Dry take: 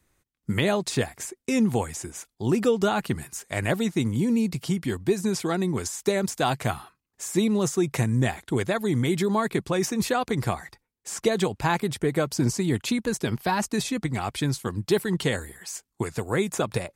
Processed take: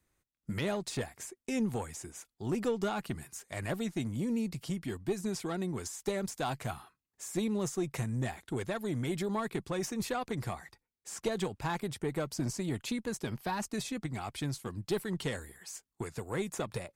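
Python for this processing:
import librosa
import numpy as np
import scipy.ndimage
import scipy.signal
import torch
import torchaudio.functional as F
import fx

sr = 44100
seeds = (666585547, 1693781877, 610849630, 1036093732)

y = fx.diode_clip(x, sr, knee_db=-16.5)
y = F.gain(torch.from_numpy(y), -8.5).numpy()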